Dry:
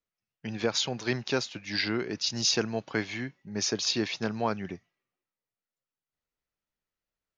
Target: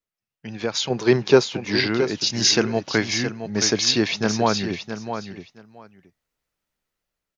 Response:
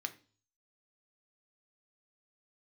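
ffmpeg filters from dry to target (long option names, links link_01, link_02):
-filter_complex "[0:a]asettb=1/sr,asplit=3[link_01][link_02][link_03];[link_01]atrim=end=0.904[link_04];[link_02]atrim=start=0.9:end=1.87,asetpts=PTS-STARTPTS,afade=type=in:duration=0.004:curve=qsin,afade=type=out:start_time=0.966:duration=0.004:curve=qsin,equalizer=frequency=160:width_type=o:width=0.67:gain=8,equalizer=frequency=400:width_type=o:width=0.67:gain=11,equalizer=frequency=1000:width_type=o:width=0.67:gain=6[link_05];[link_03]atrim=start=1.866[link_06];[link_04][link_05]acrossfade=duration=0.004:curve1=hsin:curve2=qsin[link_07];[link_07][link_06]acrossfade=duration=0.004:curve1=qsin:curve2=hsin,dynaudnorm=framelen=320:gausssize=5:maxgain=9dB,aecho=1:1:670|1340:0.355|0.0568"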